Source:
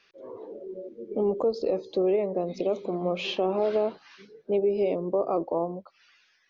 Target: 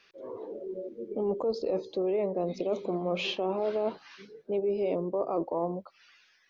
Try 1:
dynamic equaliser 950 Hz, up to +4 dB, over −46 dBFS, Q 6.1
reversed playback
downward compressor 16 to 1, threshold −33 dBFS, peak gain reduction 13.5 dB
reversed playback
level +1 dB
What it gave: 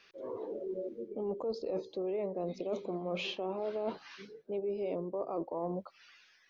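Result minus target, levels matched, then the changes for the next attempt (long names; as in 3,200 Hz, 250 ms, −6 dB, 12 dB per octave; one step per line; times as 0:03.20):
downward compressor: peak gain reduction +6.5 dB
change: downward compressor 16 to 1, threshold −26 dBFS, peak gain reduction 7 dB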